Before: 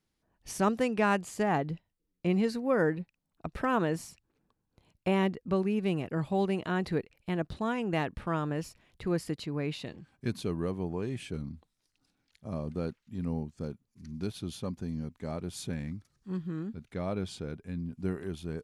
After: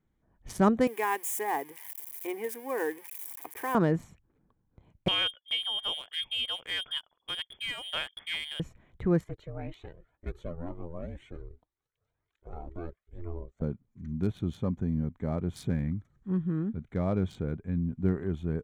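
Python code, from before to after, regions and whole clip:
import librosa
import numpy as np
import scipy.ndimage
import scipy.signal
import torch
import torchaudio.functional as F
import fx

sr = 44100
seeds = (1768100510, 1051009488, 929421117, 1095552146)

y = fx.chain(x, sr, fx.crossing_spikes(level_db=-27.5),
    fx.highpass(hz=520.0, slope=12),
    fx.fixed_phaser(hz=900.0, stages=8), at=(0.87, 3.75))
y = fx.chain(y, sr, fx.peak_eq(hz=360.0, db=-7.0, octaves=0.89),
    fx.freq_invert(carrier_hz=3400),
    fx.upward_expand(threshold_db=-41.0, expansion=1.5), at=(5.08, 8.6))
y = fx.chain(y, sr, fx.highpass(hz=250.0, slope=12),
    fx.ring_mod(carrier_hz=170.0),
    fx.comb_cascade(direction='rising', hz=2.0), at=(9.24, 13.62))
y = fx.wiener(y, sr, points=9)
y = fx.low_shelf(y, sr, hz=220.0, db=7.0)
y = fx.notch(y, sr, hz=2700.0, q=6.9)
y = y * 10.0 ** (2.0 / 20.0)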